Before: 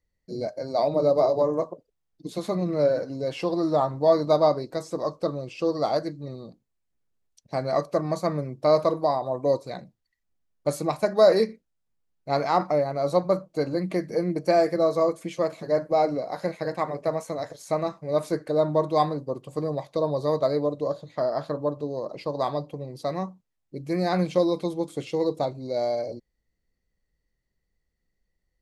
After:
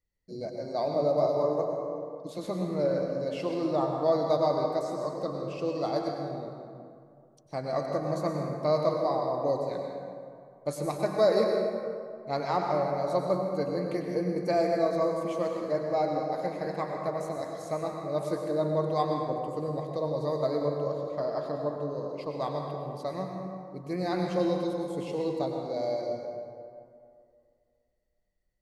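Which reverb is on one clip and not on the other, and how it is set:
dense smooth reverb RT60 2.3 s, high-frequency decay 0.5×, pre-delay 85 ms, DRR 1.5 dB
level −6.5 dB

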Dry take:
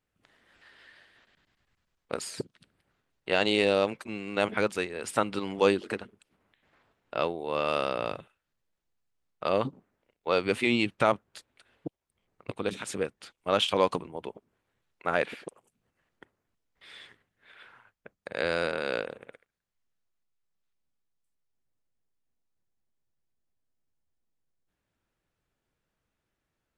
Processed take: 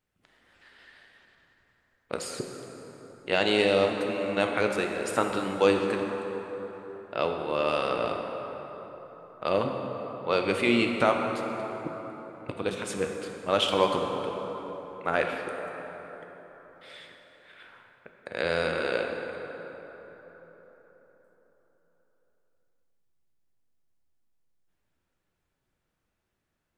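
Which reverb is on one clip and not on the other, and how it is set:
dense smooth reverb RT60 4.4 s, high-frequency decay 0.5×, DRR 2.5 dB

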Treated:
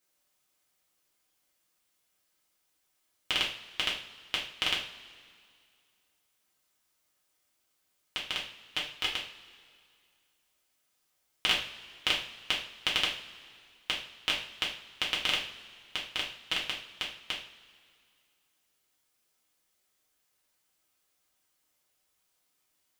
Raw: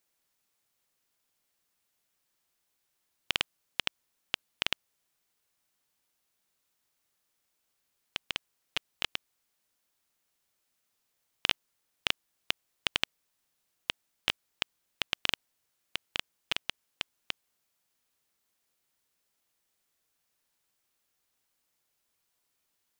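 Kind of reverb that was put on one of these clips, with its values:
coupled-rooms reverb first 0.41 s, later 2.2 s, from −19 dB, DRR −4.5 dB
level −3 dB

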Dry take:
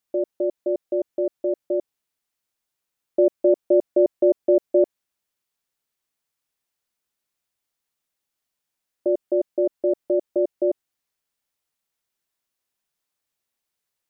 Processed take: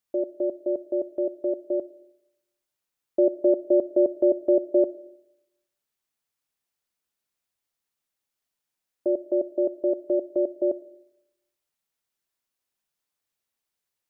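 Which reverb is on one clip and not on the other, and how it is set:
comb and all-pass reverb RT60 0.86 s, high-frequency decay 0.35×, pre-delay 20 ms, DRR 19 dB
level −2.5 dB

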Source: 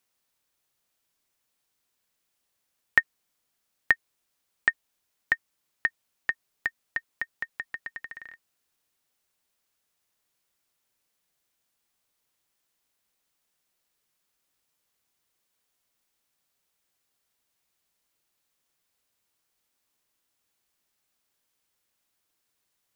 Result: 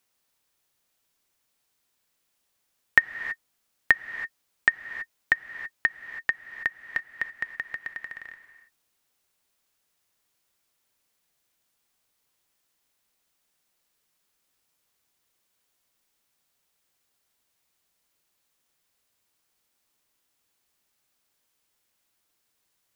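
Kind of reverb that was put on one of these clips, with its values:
reverb whose tail is shaped and stops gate 350 ms rising, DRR 10.5 dB
level +2.5 dB

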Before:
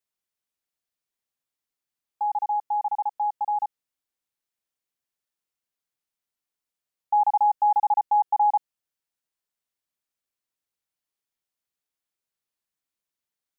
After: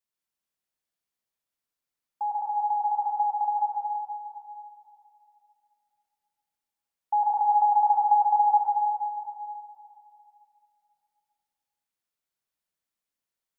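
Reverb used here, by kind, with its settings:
dense smooth reverb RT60 2.7 s, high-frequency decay 0.55×, pre-delay 85 ms, DRR −1 dB
level −3.5 dB

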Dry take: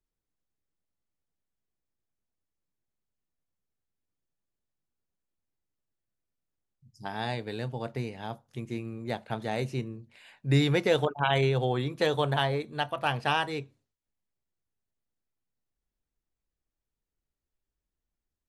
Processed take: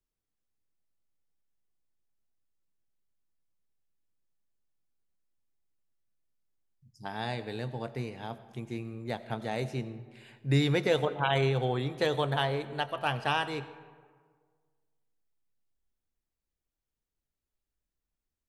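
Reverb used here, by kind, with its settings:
comb and all-pass reverb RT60 1.7 s, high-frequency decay 0.5×, pre-delay 50 ms, DRR 14 dB
level −2 dB

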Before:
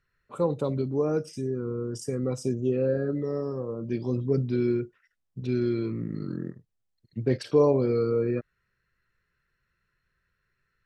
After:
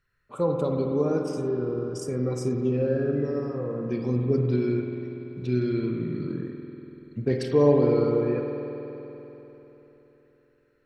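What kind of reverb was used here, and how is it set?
spring reverb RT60 3.6 s, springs 48 ms, chirp 50 ms, DRR 1.5 dB

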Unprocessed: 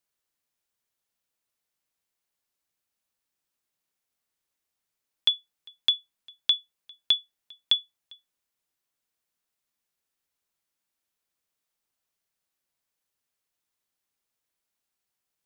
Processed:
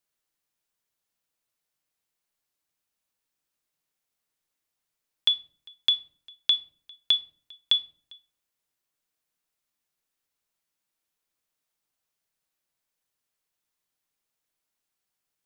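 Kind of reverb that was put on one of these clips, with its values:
rectangular room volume 500 cubic metres, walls furnished, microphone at 0.5 metres

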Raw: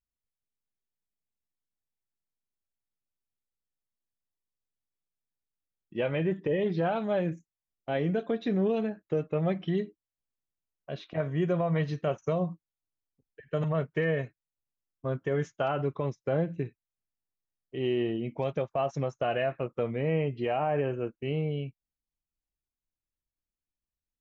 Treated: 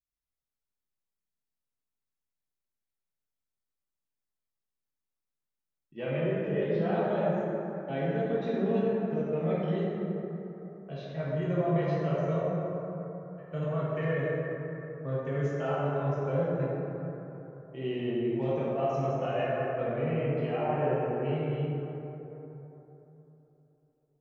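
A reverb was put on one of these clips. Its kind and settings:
dense smooth reverb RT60 3.6 s, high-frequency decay 0.35×, DRR −8 dB
level −9.5 dB

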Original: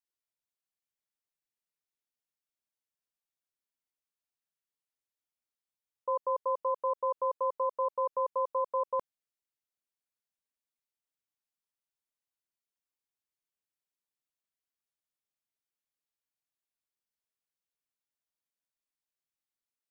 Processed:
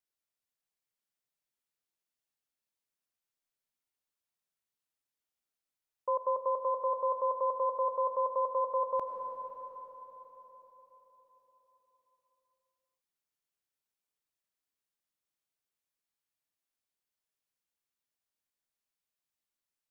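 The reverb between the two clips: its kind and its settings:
comb and all-pass reverb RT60 4.6 s, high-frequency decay 1×, pre-delay 60 ms, DRR 4.5 dB

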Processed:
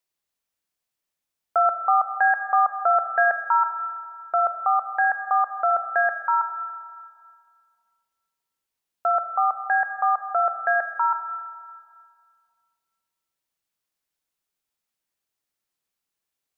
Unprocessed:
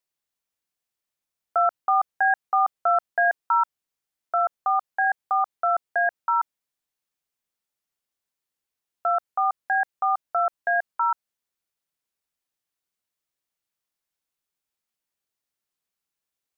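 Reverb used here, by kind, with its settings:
comb and all-pass reverb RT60 2 s, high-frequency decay 0.8×, pre-delay 10 ms, DRR 9 dB
level +1.5 dB

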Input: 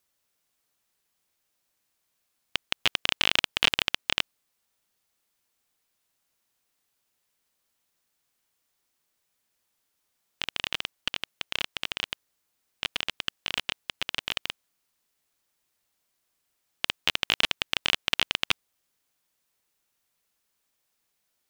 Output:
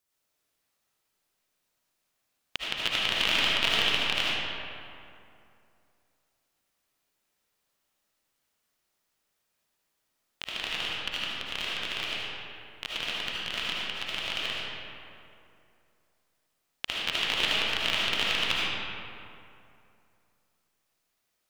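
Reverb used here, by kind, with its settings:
comb and all-pass reverb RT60 2.6 s, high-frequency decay 0.55×, pre-delay 35 ms, DRR −6.5 dB
level −6 dB

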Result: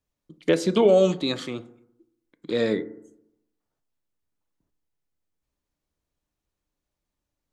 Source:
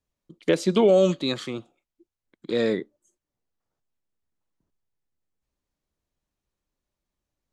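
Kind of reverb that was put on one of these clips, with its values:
feedback delay network reverb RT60 0.8 s, low-frequency decay 1.1×, high-frequency decay 0.25×, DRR 12 dB

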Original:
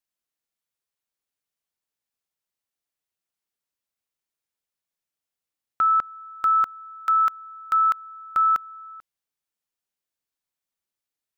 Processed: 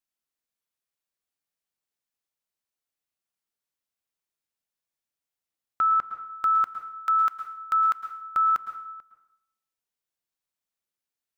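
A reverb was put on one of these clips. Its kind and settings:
dense smooth reverb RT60 0.69 s, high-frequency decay 0.8×, pre-delay 100 ms, DRR 8 dB
level −2.5 dB

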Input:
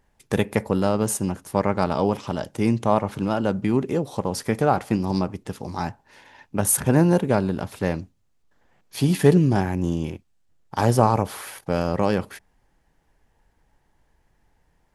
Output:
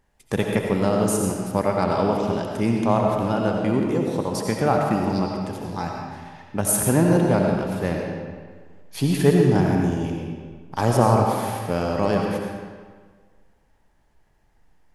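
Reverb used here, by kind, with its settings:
comb and all-pass reverb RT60 1.6 s, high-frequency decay 0.8×, pre-delay 45 ms, DRR 0.5 dB
level −1.5 dB

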